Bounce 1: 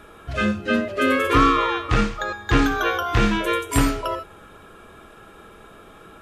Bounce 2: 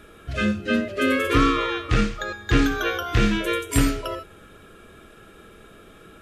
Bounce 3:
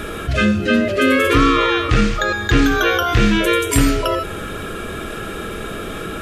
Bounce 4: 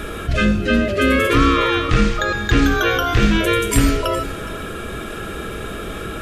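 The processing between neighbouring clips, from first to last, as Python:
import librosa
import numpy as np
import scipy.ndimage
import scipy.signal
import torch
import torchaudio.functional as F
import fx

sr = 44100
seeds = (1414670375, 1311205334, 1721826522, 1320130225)

y1 = fx.peak_eq(x, sr, hz=920.0, db=-10.5, octaves=0.83)
y2 = fx.env_flatten(y1, sr, amount_pct=50)
y2 = y2 * 10.0 ** (3.5 / 20.0)
y3 = fx.octave_divider(y2, sr, octaves=2, level_db=-4.0)
y3 = y3 + 10.0 ** (-16.0 / 20.0) * np.pad(y3, (int(415 * sr / 1000.0), 0))[:len(y3)]
y3 = y3 * 10.0 ** (-1.5 / 20.0)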